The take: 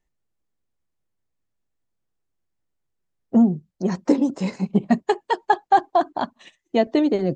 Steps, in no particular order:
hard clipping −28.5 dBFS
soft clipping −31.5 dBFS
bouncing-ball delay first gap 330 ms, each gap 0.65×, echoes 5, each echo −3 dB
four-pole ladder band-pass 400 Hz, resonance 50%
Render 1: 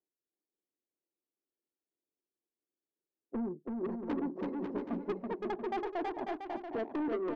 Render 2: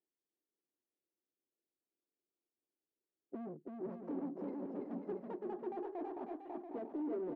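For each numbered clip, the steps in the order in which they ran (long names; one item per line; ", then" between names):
four-pole ladder band-pass, then soft clipping, then hard clipping, then bouncing-ball delay
hard clipping, then four-pole ladder band-pass, then soft clipping, then bouncing-ball delay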